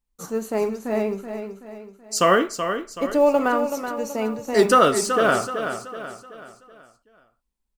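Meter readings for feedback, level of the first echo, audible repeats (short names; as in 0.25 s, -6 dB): 43%, -8.5 dB, 4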